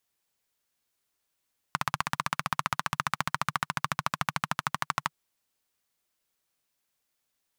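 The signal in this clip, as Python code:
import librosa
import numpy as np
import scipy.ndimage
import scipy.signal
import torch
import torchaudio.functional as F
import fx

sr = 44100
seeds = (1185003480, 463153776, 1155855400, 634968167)

y = fx.engine_single_rev(sr, seeds[0], length_s=3.38, rpm=1900, resonances_hz=(150.0, 1100.0), end_rpm=1500)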